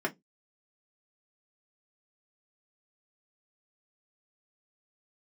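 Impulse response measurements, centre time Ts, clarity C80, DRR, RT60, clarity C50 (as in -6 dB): 8 ms, 36.0 dB, -2.0 dB, 0.15 s, 25.0 dB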